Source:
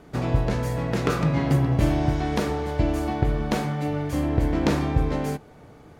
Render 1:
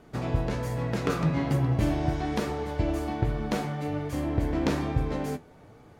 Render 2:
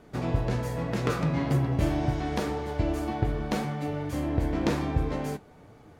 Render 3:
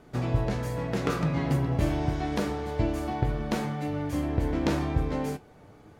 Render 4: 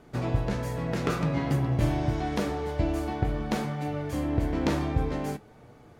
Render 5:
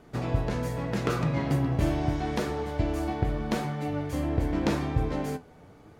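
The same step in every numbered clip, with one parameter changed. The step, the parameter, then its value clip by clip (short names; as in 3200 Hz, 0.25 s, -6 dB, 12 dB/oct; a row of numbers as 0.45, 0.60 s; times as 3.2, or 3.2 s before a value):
flange, rate: 1.2, 1.9, 0.31, 0.52, 0.82 Hz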